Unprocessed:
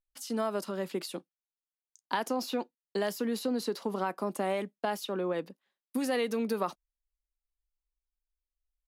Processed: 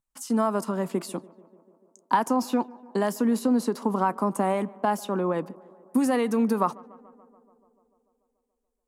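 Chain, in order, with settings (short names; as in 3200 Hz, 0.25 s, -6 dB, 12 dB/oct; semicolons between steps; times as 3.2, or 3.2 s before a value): graphic EQ 125/250/1000/4000/8000 Hz +12/+7/+11/-6/+8 dB; on a send: tape echo 0.145 s, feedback 80%, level -22 dB, low-pass 1800 Hz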